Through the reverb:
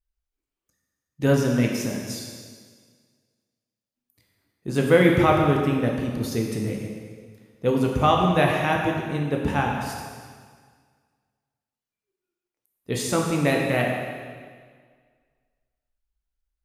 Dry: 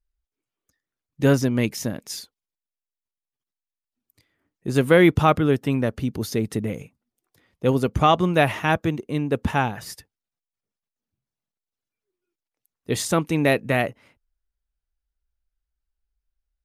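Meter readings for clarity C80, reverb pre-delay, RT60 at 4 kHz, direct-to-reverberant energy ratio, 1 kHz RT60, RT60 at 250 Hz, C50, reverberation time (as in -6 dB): 3.5 dB, 6 ms, 1.7 s, -0.5 dB, 1.7 s, 1.8 s, 2.0 dB, 1.8 s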